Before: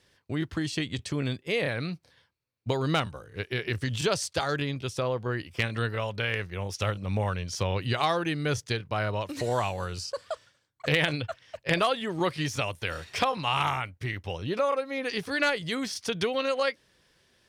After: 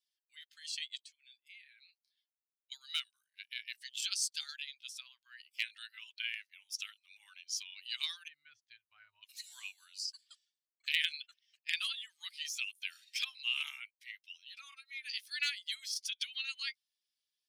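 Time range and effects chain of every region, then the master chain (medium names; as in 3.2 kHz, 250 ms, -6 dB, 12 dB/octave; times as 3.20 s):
1.04–2.72 s: doubling 14 ms -10.5 dB + dynamic bell 2.2 kHz, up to +5 dB, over -44 dBFS, Q 0.91 + compression 2.5:1, threshold -46 dBFS
8.28–9.23 s: low-pass 1.6 kHz 6 dB/octave + tilt EQ -4.5 dB/octave
whole clip: expander on every frequency bin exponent 1.5; inverse Chebyshev high-pass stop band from 550 Hz, stop band 70 dB; trim +1 dB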